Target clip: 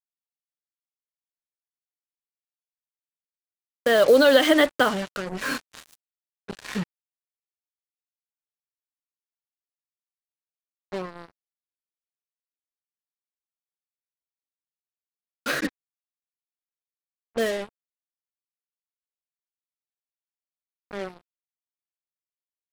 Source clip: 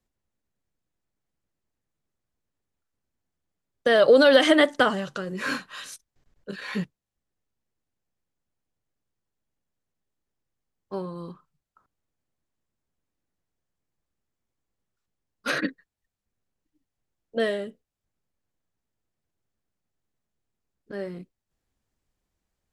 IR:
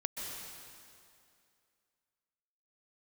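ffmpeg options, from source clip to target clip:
-af "acrusher=bits=4:mix=0:aa=0.5"

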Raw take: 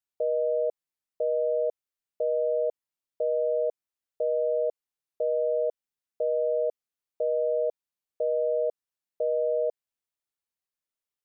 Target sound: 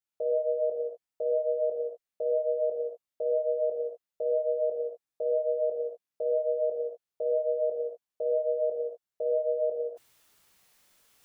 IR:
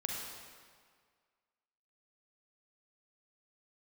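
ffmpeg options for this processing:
-filter_complex "[0:a]flanger=delay=15:depth=2.2:speed=2[link_01];[1:a]atrim=start_sample=2205,afade=type=out:start_time=0.3:duration=0.01,atrim=end_sample=13671[link_02];[link_01][link_02]afir=irnorm=-1:irlink=0,areverse,acompressor=mode=upward:threshold=-44dB:ratio=2.5,areverse,volume=1.5dB"

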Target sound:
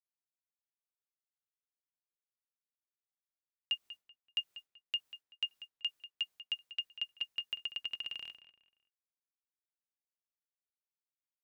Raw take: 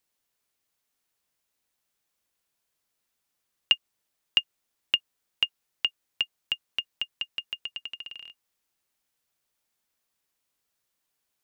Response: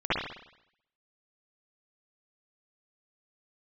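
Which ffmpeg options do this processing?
-filter_complex "[0:a]agate=range=-33dB:threshold=-49dB:ratio=3:detection=peak,areverse,acompressor=threshold=-34dB:ratio=6,areverse,asplit=2[link_01][link_02];[link_02]adelay=191,lowpass=frequency=3000:poles=1,volume=-12dB,asplit=2[link_03][link_04];[link_04]adelay=191,lowpass=frequency=3000:poles=1,volume=0.33,asplit=2[link_05][link_06];[link_06]adelay=191,lowpass=frequency=3000:poles=1,volume=0.33[link_07];[link_01][link_03][link_05][link_07]amix=inputs=4:normalize=0"

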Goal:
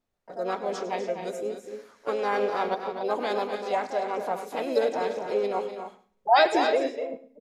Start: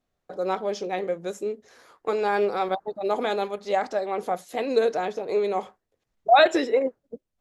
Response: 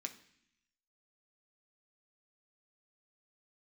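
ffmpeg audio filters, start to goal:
-filter_complex "[0:a]asplit=2[link_01][link_02];[link_02]asetrate=55563,aresample=44100,atempo=0.793701,volume=-6dB[link_03];[link_01][link_03]amix=inputs=2:normalize=0,aecho=1:1:247.8|285.7:0.355|0.282,asplit=2[link_04][link_05];[1:a]atrim=start_sample=2205,afade=type=out:start_time=0.38:duration=0.01,atrim=end_sample=17199,adelay=102[link_06];[link_05][link_06]afir=irnorm=-1:irlink=0,volume=-12dB[link_07];[link_04][link_07]amix=inputs=2:normalize=0,volume=-4dB"

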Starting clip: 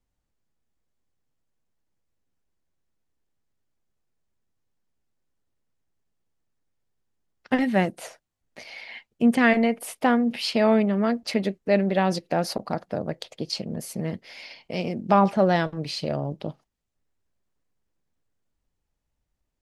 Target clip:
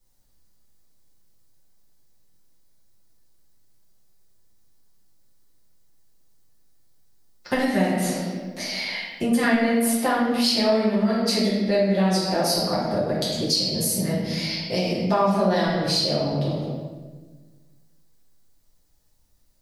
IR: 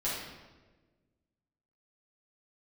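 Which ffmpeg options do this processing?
-filter_complex "[0:a]aexciter=amount=2.7:drive=7.2:freq=3900[link_01];[1:a]atrim=start_sample=2205[link_02];[link_01][link_02]afir=irnorm=-1:irlink=0,acompressor=threshold=-27dB:ratio=2.5,volume=4dB"

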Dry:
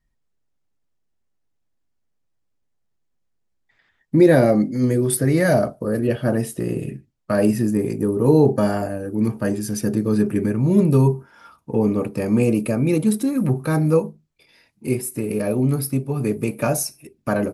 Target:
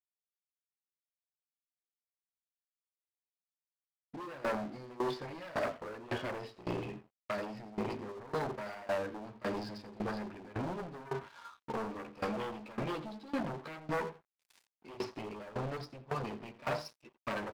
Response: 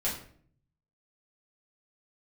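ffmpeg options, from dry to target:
-filter_complex "[0:a]equalizer=frequency=160:width_type=o:width=0.33:gain=-3,equalizer=frequency=1000:width_type=o:width=0.33:gain=10,equalizer=frequency=2000:width_type=o:width=0.33:gain=-4,areverse,acompressor=threshold=-23dB:ratio=6,areverse,flanger=delay=7.8:depth=6.7:regen=-1:speed=0.12:shape=triangular,alimiter=level_in=1dB:limit=-24dB:level=0:latency=1:release=127,volume=-1dB,bandreject=frequency=50:width_type=h:width=6,bandreject=frequency=100:width_type=h:width=6,bandreject=frequency=150:width_type=h:width=6,bandreject=frequency=200:width_type=h:width=6,bandreject=frequency=250:width_type=h:width=6,bandreject=frequency=300:width_type=h:width=6,aresample=11025,aeval=exprs='0.0708*sin(PI/2*2.51*val(0)/0.0708)':channel_layout=same,aresample=44100,asplit=2[link_01][link_02];[link_02]adelay=85,lowpass=frequency=3000:poles=1,volume=-11.5dB,asplit=2[link_03][link_04];[link_04]adelay=85,lowpass=frequency=3000:poles=1,volume=0.26,asplit=2[link_05][link_06];[link_06]adelay=85,lowpass=frequency=3000:poles=1,volume=0.26[link_07];[link_01][link_03][link_05][link_07]amix=inputs=4:normalize=0,aeval=exprs='sgn(val(0))*max(abs(val(0))-0.00794,0)':channel_layout=same,lowshelf=frequency=430:gain=-10.5,aeval=exprs='val(0)*pow(10,-20*if(lt(mod(1.8*n/s,1),2*abs(1.8)/1000),1-mod(1.8*n/s,1)/(2*abs(1.8)/1000),(mod(1.8*n/s,1)-2*abs(1.8)/1000)/(1-2*abs(1.8)/1000))/20)':channel_layout=same,volume=1dB"

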